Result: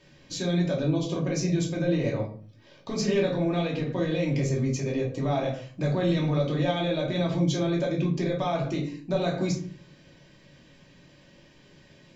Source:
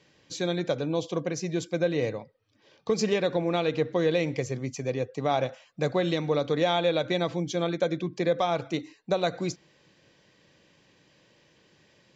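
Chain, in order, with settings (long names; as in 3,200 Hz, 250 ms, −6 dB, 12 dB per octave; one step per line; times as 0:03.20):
low-shelf EQ 86 Hz +10.5 dB
brickwall limiter −23 dBFS, peak gain reduction 10 dB
rectangular room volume 340 cubic metres, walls furnished, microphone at 2.7 metres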